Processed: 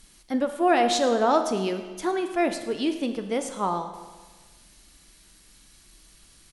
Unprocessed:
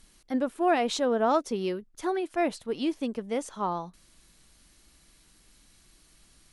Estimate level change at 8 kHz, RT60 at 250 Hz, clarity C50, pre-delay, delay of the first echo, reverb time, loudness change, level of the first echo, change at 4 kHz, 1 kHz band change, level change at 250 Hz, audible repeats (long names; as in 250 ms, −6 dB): +6.0 dB, 1.4 s, 8.5 dB, 9 ms, 108 ms, 1.4 s, +3.5 dB, −18.0 dB, +5.5 dB, +4.5 dB, +3.0 dB, 1